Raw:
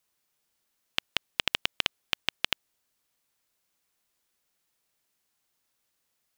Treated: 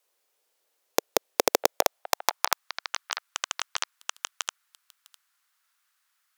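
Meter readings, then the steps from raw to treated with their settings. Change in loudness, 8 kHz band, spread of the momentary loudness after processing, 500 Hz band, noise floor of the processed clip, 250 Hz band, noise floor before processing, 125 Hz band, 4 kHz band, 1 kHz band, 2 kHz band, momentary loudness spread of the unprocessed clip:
+2.0 dB, +16.0 dB, 9 LU, +19.0 dB, -75 dBFS, +9.5 dB, -78 dBFS, no reading, -1.0 dB, +13.5 dB, +1.0 dB, 6 LU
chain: repeats whose band climbs or falls 654 ms, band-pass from 560 Hz, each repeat 1.4 oct, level -2 dB; Chebyshev shaper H 3 -9 dB, 7 -18 dB, 8 -8 dB, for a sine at -3 dBFS; high-pass sweep 470 Hz -> 1.3 kHz, 1.56–2.73 s; trim +3 dB

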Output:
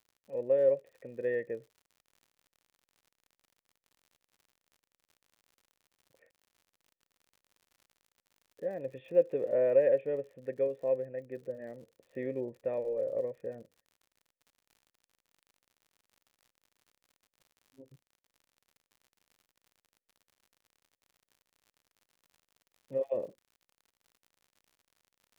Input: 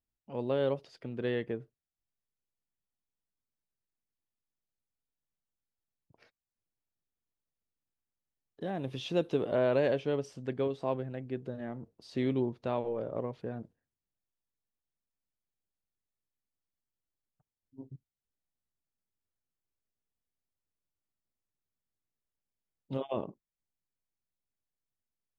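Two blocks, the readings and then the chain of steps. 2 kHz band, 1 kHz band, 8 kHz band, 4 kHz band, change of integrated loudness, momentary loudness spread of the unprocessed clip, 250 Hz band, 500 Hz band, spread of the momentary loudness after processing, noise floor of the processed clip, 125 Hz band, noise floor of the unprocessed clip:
-4.0 dB, -10.5 dB, no reading, under -15 dB, +1.5 dB, 14 LU, -9.0 dB, +3.0 dB, 17 LU, under -85 dBFS, -11.5 dB, under -85 dBFS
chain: cascade formant filter e; crackle 72 per s -59 dBFS; trim +8 dB

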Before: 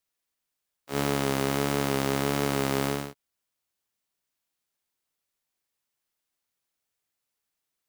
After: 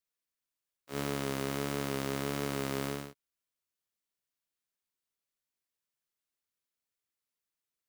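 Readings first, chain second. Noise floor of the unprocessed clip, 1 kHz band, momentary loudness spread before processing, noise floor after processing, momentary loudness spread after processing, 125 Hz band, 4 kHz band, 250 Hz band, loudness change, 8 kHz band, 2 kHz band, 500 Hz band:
-84 dBFS, -9.0 dB, 6 LU, under -85 dBFS, 6 LU, -7.5 dB, -7.5 dB, -7.5 dB, -8.0 dB, -7.5 dB, -7.5 dB, -8.0 dB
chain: peaking EQ 800 Hz -5.5 dB 0.29 oct; trim -7.5 dB

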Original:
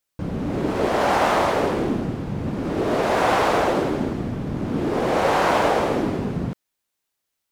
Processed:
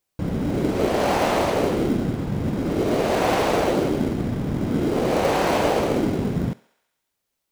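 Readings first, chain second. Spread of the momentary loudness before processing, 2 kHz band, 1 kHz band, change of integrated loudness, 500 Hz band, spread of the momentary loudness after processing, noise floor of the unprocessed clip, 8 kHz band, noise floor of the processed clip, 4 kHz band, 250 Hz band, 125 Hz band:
9 LU, -3.0 dB, -3.5 dB, -0.5 dB, 0.0 dB, 5 LU, -80 dBFS, +2.0 dB, -79 dBFS, 0.0 dB, +1.5 dB, +2.0 dB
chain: dynamic bell 1.2 kHz, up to -6 dB, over -35 dBFS, Q 0.91; in parallel at -10.5 dB: sample-and-hold 25×; on the sum: thinning echo 68 ms, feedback 69%, high-pass 500 Hz, level -19.5 dB

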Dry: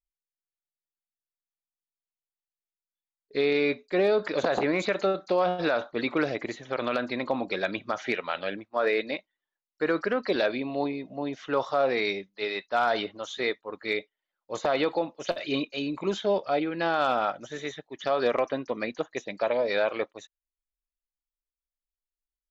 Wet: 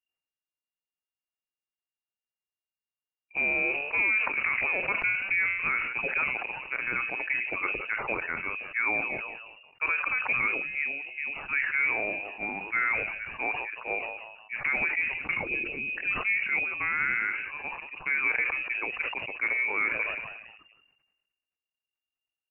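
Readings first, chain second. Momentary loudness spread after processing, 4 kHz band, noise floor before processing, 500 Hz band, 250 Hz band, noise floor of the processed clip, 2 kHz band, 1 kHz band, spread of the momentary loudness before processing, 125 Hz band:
8 LU, -11.5 dB, under -85 dBFS, -15.0 dB, -14.0 dB, under -85 dBFS, +8.0 dB, -6.0 dB, 9 LU, -8.5 dB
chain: frequency-shifting echo 180 ms, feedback 44%, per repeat -90 Hz, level -20 dB; frequency inversion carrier 2.8 kHz; decay stretcher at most 46 dB/s; trim -3 dB

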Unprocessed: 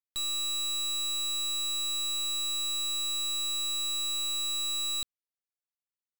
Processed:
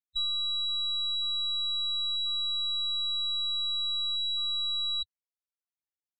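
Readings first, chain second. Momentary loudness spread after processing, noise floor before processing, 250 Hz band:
0 LU, under -85 dBFS, under -20 dB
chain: loudest bins only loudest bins 16; reverb removal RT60 0.54 s; elliptic low-pass 6.1 kHz, stop band 40 dB; trim +5 dB

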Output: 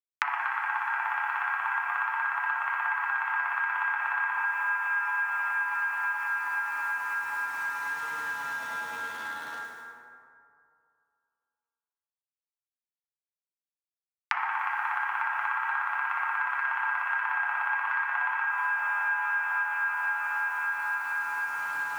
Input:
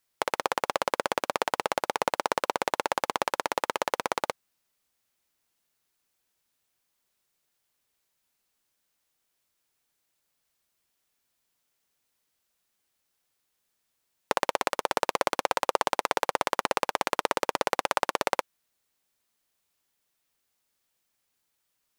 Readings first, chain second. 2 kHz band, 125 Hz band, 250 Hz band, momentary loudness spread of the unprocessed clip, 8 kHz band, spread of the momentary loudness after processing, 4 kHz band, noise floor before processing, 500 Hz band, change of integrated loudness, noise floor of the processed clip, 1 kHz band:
+10.5 dB, under -15 dB, under -15 dB, 3 LU, -13.5 dB, 5 LU, -12.5 dB, -78 dBFS, -23.0 dB, 0.0 dB, under -85 dBFS, +0.5 dB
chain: tilt shelf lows +3.5 dB, about 1.2 kHz; mistuned SSB +350 Hz 450–2200 Hz; echo with a slow build-up 107 ms, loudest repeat 8, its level -17.5 dB; word length cut 10-bit, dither none; compression, threshold -27 dBFS, peak gain reduction 9.5 dB; FDN reverb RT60 2.4 s, low-frequency decay 0.9×, high-frequency decay 0.4×, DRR -7 dB; flange 0.37 Hz, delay 6.3 ms, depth 3.4 ms, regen +53%; three bands compressed up and down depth 100%

